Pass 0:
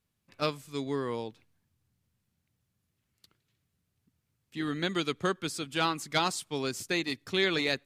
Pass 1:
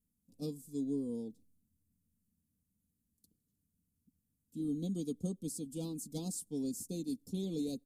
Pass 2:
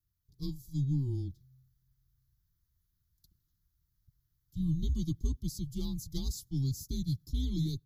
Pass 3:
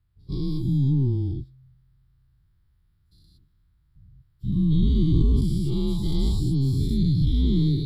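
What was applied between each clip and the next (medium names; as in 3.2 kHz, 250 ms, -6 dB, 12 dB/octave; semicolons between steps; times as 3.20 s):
Chebyshev band-stop 260–9300 Hz, order 2; comb 4.1 ms, depth 66%; trim -1.5 dB
level rider gain up to 4.5 dB; static phaser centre 2.7 kHz, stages 6; frequency shift -130 Hz; trim +3 dB
every event in the spectrogram widened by 240 ms; boxcar filter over 7 samples; trim +7 dB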